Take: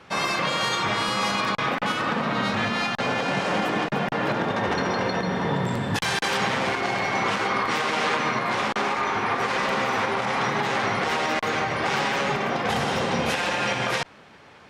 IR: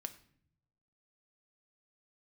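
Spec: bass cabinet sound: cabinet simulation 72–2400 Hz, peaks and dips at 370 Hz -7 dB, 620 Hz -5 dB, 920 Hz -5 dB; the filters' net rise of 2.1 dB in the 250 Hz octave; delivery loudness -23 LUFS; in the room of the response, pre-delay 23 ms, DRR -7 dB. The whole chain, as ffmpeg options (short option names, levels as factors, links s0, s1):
-filter_complex "[0:a]equalizer=f=250:t=o:g=4,asplit=2[s0][s1];[1:a]atrim=start_sample=2205,adelay=23[s2];[s1][s2]afir=irnorm=-1:irlink=0,volume=3.16[s3];[s0][s3]amix=inputs=2:normalize=0,highpass=f=72:w=0.5412,highpass=f=72:w=1.3066,equalizer=f=370:t=q:w=4:g=-7,equalizer=f=620:t=q:w=4:g=-5,equalizer=f=920:t=q:w=4:g=-5,lowpass=f=2400:w=0.5412,lowpass=f=2400:w=1.3066,volume=0.562"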